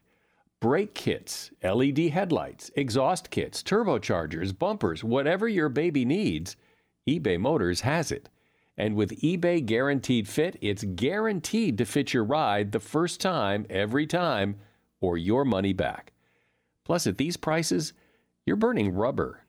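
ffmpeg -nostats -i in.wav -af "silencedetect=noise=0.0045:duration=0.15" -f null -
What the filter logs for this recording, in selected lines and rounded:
silence_start: 0.00
silence_end: 0.62 | silence_duration: 0.62
silence_start: 6.53
silence_end: 7.07 | silence_duration: 0.54
silence_start: 8.27
silence_end: 8.78 | silence_duration: 0.51
silence_start: 14.64
silence_end: 15.02 | silence_duration: 0.38
silence_start: 16.09
silence_end: 16.86 | silence_duration: 0.77
silence_start: 17.92
silence_end: 18.47 | silence_duration: 0.55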